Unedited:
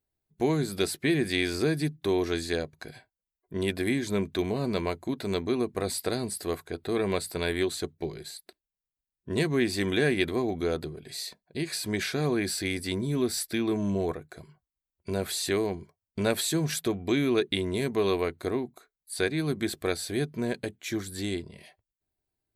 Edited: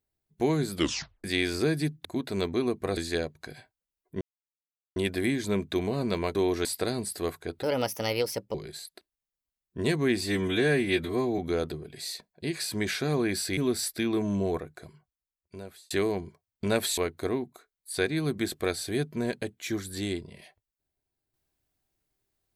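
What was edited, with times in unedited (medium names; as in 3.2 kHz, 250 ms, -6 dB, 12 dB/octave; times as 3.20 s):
0.75 s: tape stop 0.49 s
2.05–2.35 s: swap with 4.98–5.90 s
3.59 s: insert silence 0.75 s
6.88–8.06 s: speed 129%
9.73–10.51 s: stretch 1.5×
12.70–13.12 s: delete
14.29–15.45 s: fade out
16.52–18.19 s: delete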